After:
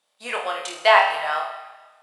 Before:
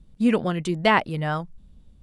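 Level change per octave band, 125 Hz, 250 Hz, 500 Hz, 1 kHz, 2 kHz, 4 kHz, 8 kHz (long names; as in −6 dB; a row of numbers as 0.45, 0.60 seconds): below −35 dB, below −20 dB, +2.5 dB, +5.5 dB, +5.5 dB, +6.0 dB, +6.5 dB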